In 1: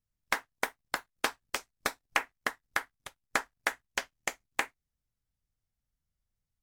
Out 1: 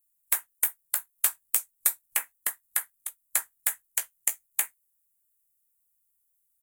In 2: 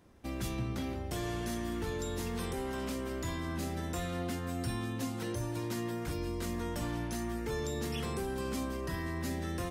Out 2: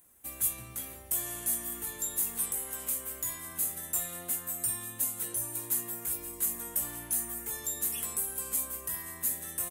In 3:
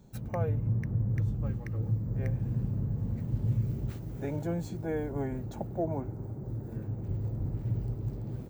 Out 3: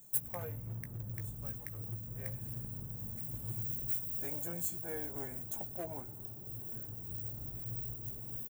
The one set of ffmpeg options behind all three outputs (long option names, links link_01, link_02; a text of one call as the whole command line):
ffmpeg -i in.wav -filter_complex "[0:a]acrossover=split=2400[link_01][link_02];[link_01]asoftclip=type=hard:threshold=-24dB[link_03];[link_03][link_02]amix=inputs=2:normalize=0,tiltshelf=frequency=740:gain=-6,asplit=2[link_04][link_05];[link_05]adelay=17,volume=-10dB[link_06];[link_04][link_06]amix=inputs=2:normalize=0,aexciter=amount=13.7:drive=5.5:freq=7600,volume=-9dB" out.wav